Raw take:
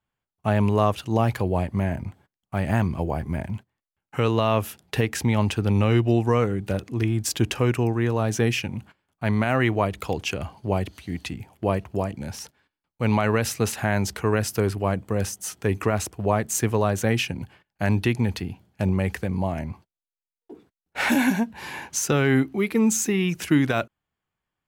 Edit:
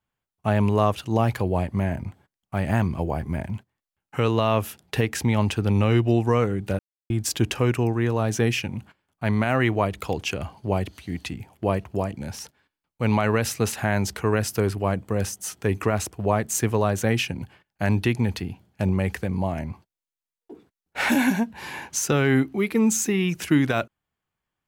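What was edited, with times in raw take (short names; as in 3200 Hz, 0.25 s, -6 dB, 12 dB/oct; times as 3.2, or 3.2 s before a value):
6.79–7.1 mute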